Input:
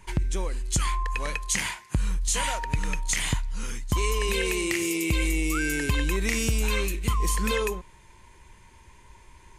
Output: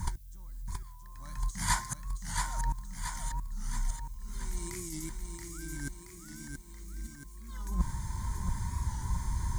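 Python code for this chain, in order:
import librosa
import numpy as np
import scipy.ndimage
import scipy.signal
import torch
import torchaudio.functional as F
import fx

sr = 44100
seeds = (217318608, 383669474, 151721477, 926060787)

y = fx.highpass(x, sr, hz=53.0, slope=6)
y = fx.bass_treble(y, sr, bass_db=13, treble_db=8)
y = fx.over_compress(y, sr, threshold_db=-30.0, ratio=-0.5)
y = fx.high_shelf(y, sr, hz=10000.0, db=-10.0)
y = fx.fixed_phaser(y, sr, hz=1100.0, stages=4)
y = fx.echo_feedback(y, sr, ms=677, feedback_pct=53, wet_db=-5)
y = fx.dmg_noise_colour(y, sr, seeds[0], colour='violet', level_db=-60.0)
y = fx.record_warp(y, sr, rpm=45.0, depth_cents=100.0)
y = F.gain(torch.from_numpy(y), -3.0).numpy()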